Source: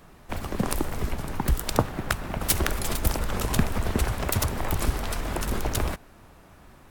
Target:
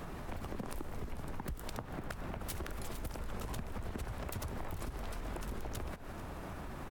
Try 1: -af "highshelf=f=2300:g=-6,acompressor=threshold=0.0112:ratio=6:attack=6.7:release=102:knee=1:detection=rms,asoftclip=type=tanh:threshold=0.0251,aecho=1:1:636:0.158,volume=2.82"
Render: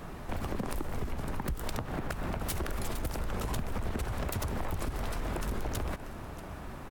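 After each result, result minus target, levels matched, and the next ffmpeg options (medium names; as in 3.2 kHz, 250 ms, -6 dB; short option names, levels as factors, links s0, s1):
echo 193 ms late; compression: peak gain reduction -8 dB
-af "highshelf=f=2300:g=-6,acompressor=threshold=0.0112:ratio=6:attack=6.7:release=102:knee=1:detection=rms,asoftclip=type=tanh:threshold=0.0251,aecho=1:1:443:0.158,volume=2.82"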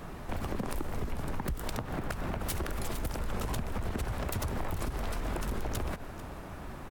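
compression: peak gain reduction -8 dB
-af "highshelf=f=2300:g=-6,acompressor=threshold=0.00376:ratio=6:attack=6.7:release=102:knee=1:detection=rms,asoftclip=type=tanh:threshold=0.0251,aecho=1:1:443:0.158,volume=2.82"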